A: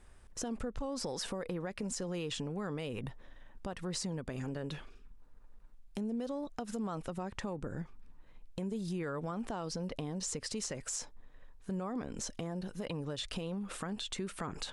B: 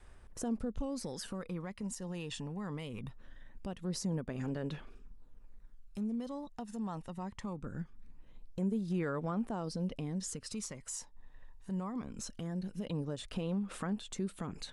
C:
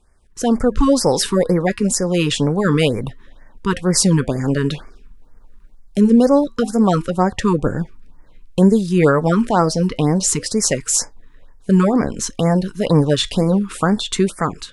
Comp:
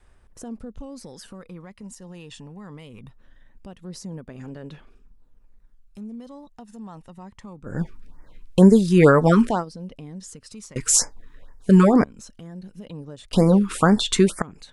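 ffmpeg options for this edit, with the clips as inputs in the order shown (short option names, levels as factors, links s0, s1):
-filter_complex "[2:a]asplit=3[s0][s1][s2];[1:a]asplit=4[s3][s4][s5][s6];[s3]atrim=end=7.89[s7];[s0]atrim=start=7.65:end=9.65[s8];[s4]atrim=start=9.41:end=10.762[s9];[s1]atrim=start=10.758:end=12.042[s10];[s5]atrim=start=12.038:end=13.332[s11];[s2]atrim=start=13.328:end=14.422[s12];[s6]atrim=start=14.418[s13];[s7][s8]acrossfade=d=0.24:c1=tri:c2=tri[s14];[s14][s9]acrossfade=d=0.24:c1=tri:c2=tri[s15];[s15][s10]acrossfade=d=0.004:c1=hsin:c2=hsin[s16];[s16][s11]acrossfade=d=0.004:c1=hsin:c2=hsin[s17];[s17][s12]acrossfade=d=0.004:c1=hsin:c2=hsin[s18];[s18][s13]acrossfade=d=0.004:c1=hsin:c2=hsin"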